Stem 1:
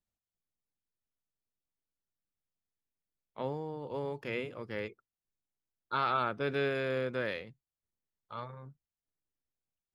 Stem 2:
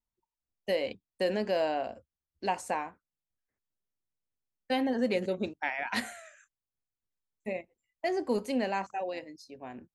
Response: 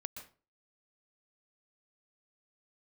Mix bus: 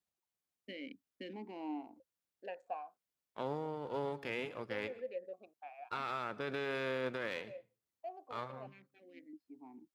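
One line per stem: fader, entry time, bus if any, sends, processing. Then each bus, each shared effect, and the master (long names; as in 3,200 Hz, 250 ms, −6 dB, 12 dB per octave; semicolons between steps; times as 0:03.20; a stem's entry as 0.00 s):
0.0 dB, 0.00 s, send −7.5 dB, gain on one half-wave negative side −7 dB; low-shelf EQ 170 Hz −9 dB; brickwall limiter −28 dBFS, peak gain reduction 10 dB
+1.0 dB, 0.00 s, no send, adaptive Wiener filter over 15 samples; formant filter that steps through the vowels 1.5 Hz; automatic ducking −10 dB, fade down 1.20 s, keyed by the first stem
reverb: on, RT60 0.35 s, pre-delay 115 ms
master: high-pass filter 54 Hz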